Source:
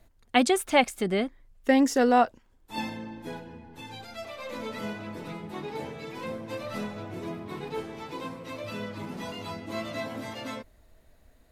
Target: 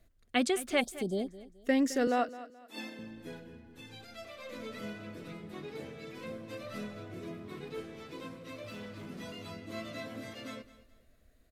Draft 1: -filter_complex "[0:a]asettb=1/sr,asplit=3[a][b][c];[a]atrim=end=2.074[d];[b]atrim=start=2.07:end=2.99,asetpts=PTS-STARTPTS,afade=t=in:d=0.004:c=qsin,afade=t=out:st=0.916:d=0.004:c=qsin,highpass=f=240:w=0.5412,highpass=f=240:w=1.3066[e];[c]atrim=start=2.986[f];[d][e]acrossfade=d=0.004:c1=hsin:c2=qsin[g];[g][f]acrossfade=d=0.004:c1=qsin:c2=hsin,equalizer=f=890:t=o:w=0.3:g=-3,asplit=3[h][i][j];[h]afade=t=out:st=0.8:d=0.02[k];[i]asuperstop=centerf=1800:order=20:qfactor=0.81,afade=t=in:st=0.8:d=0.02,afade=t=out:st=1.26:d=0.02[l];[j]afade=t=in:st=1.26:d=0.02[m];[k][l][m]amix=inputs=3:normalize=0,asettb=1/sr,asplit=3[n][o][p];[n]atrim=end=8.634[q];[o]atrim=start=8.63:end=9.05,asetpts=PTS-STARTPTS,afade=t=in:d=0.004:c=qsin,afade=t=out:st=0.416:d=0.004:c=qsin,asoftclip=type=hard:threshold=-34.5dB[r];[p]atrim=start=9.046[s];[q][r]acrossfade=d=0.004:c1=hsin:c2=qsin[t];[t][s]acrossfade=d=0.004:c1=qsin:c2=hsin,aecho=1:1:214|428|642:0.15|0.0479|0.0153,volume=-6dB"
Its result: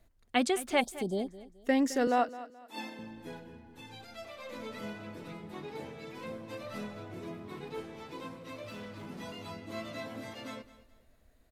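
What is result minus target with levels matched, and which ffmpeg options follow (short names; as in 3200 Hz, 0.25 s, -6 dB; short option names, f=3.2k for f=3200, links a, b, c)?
1000 Hz band +3.0 dB
-filter_complex "[0:a]asettb=1/sr,asplit=3[a][b][c];[a]atrim=end=2.074[d];[b]atrim=start=2.07:end=2.99,asetpts=PTS-STARTPTS,afade=t=in:d=0.004:c=qsin,afade=t=out:st=0.916:d=0.004:c=qsin,highpass=f=240:w=0.5412,highpass=f=240:w=1.3066[e];[c]atrim=start=2.986[f];[d][e]acrossfade=d=0.004:c1=hsin:c2=qsin[g];[g][f]acrossfade=d=0.004:c1=qsin:c2=hsin,equalizer=f=890:t=o:w=0.3:g=-14.5,asplit=3[h][i][j];[h]afade=t=out:st=0.8:d=0.02[k];[i]asuperstop=centerf=1800:order=20:qfactor=0.81,afade=t=in:st=0.8:d=0.02,afade=t=out:st=1.26:d=0.02[l];[j]afade=t=in:st=1.26:d=0.02[m];[k][l][m]amix=inputs=3:normalize=0,asettb=1/sr,asplit=3[n][o][p];[n]atrim=end=8.634[q];[o]atrim=start=8.63:end=9.05,asetpts=PTS-STARTPTS,afade=t=in:d=0.004:c=qsin,afade=t=out:st=0.416:d=0.004:c=qsin,asoftclip=type=hard:threshold=-34.5dB[r];[p]atrim=start=9.046[s];[q][r]acrossfade=d=0.004:c1=hsin:c2=qsin[t];[t][s]acrossfade=d=0.004:c1=qsin:c2=hsin,aecho=1:1:214|428|642:0.15|0.0479|0.0153,volume=-6dB"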